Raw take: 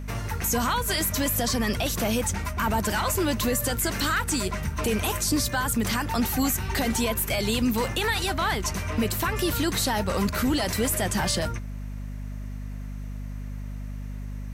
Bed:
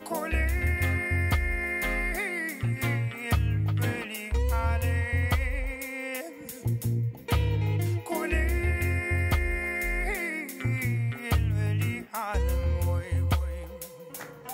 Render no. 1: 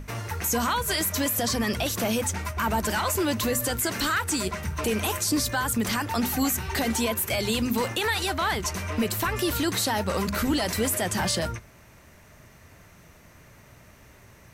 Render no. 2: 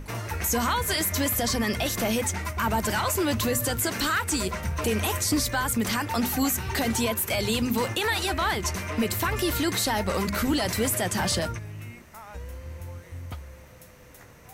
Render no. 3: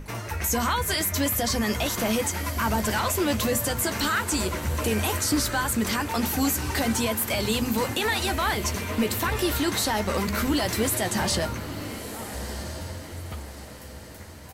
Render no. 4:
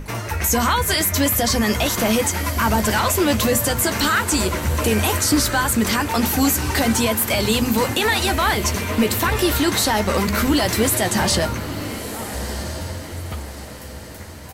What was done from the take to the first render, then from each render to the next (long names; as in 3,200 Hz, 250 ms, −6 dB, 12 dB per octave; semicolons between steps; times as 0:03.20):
mains-hum notches 50/100/150/200/250 Hz
mix in bed −12 dB
double-tracking delay 14 ms −12 dB; feedback delay with all-pass diffusion 1,316 ms, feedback 41%, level −11 dB
level +6.5 dB